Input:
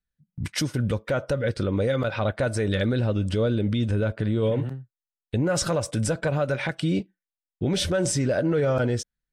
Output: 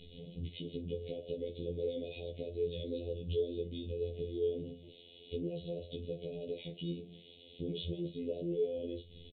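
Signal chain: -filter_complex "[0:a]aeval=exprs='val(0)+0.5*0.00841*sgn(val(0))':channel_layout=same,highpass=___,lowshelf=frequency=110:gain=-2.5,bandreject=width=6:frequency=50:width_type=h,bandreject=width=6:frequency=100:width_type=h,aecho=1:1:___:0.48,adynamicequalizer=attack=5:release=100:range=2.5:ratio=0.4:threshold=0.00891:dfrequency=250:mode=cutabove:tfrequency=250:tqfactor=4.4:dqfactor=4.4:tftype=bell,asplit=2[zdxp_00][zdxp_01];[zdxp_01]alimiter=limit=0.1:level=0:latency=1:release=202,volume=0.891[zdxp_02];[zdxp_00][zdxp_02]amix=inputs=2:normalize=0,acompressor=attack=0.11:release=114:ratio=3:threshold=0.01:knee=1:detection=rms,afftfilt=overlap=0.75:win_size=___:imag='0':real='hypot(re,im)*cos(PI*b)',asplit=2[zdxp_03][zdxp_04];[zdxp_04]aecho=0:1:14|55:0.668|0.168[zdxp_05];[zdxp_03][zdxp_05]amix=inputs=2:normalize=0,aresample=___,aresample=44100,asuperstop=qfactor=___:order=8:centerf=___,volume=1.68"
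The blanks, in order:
49, 4.4, 2048, 8000, 0.52, 1300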